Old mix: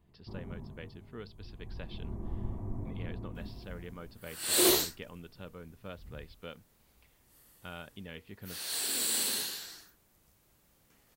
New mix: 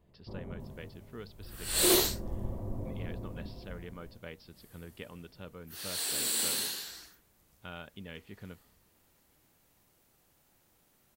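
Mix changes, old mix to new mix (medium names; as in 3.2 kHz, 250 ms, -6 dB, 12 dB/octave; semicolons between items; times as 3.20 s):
first sound: add peaking EQ 540 Hz +14 dB 0.36 oct; second sound: entry -2.75 s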